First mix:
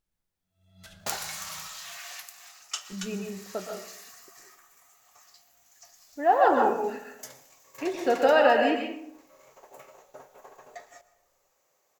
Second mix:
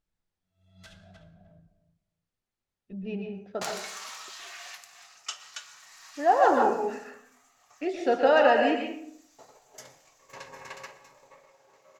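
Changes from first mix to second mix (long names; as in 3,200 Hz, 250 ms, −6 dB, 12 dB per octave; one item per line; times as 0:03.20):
second sound: entry +2.55 s
master: add high-frequency loss of the air 51 metres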